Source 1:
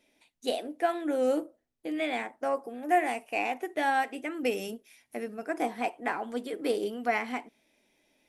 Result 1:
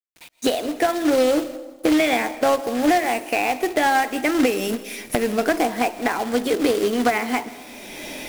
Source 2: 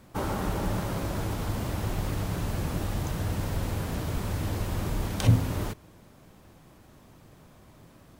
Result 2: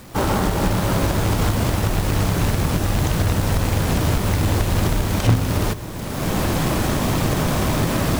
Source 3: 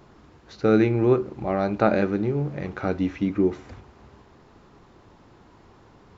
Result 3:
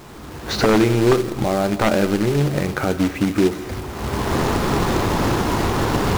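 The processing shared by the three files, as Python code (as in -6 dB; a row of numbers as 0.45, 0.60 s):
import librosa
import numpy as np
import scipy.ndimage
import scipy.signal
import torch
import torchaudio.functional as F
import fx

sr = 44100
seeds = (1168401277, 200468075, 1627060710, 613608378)

p1 = fx.recorder_agc(x, sr, target_db=-14.5, rise_db_per_s=34.0, max_gain_db=30)
p2 = fx.quant_companded(p1, sr, bits=4)
p3 = (np.mod(10.0 ** (10.0 / 20.0) * p2 + 1.0, 2.0) - 1.0) / 10.0 ** (10.0 / 20.0)
p4 = fx.quant_dither(p3, sr, seeds[0], bits=8, dither='none')
p5 = p4 + fx.echo_wet_highpass(p4, sr, ms=168, feedback_pct=43, hz=3000.0, wet_db=-19.5, dry=0)
p6 = fx.rev_freeverb(p5, sr, rt60_s=1.6, hf_ratio=0.35, predelay_ms=95, drr_db=17.0)
p7 = fx.slew_limit(p6, sr, full_power_hz=290.0)
y = F.gain(torch.from_numpy(p7), 3.5).numpy()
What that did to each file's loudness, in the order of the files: +10.0, +9.5, +4.0 LU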